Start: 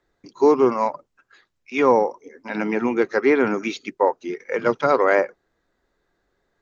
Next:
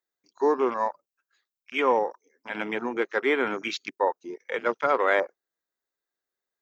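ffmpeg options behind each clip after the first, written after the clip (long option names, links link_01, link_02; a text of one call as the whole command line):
ffmpeg -i in.wav -af "aemphasis=mode=production:type=riaa,afwtdn=0.0316,volume=-4dB" out.wav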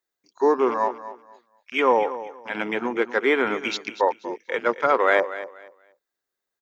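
ffmpeg -i in.wav -af "aecho=1:1:240|480|720:0.2|0.0459|0.0106,volume=3.5dB" out.wav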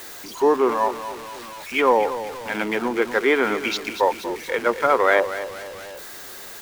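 ffmpeg -i in.wav -af "aeval=exprs='val(0)+0.5*0.0251*sgn(val(0))':channel_layout=same,volume=1dB" out.wav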